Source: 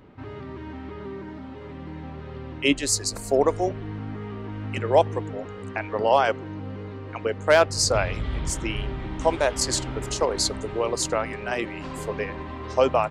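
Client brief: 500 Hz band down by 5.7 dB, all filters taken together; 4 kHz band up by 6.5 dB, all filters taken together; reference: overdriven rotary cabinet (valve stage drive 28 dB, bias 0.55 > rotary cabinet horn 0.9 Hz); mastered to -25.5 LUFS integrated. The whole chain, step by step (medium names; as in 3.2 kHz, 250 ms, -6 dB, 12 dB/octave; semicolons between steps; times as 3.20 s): peaking EQ 500 Hz -7.5 dB; peaking EQ 4 kHz +8.5 dB; valve stage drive 28 dB, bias 0.55; rotary cabinet horn 0.9 Hz; trim +11 dB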